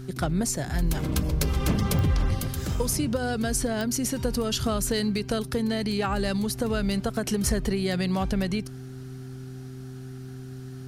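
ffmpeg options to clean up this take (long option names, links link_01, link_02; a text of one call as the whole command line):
ffmpeg -i in.wav -af "adeclick=threshold=4,bandreject=frequency=129.2:width_type=h:width=4,bandreject=frequency=258.4:width_type=h:width=4,bandreject=frequency=387.6:width_type=h:width=4" out.wav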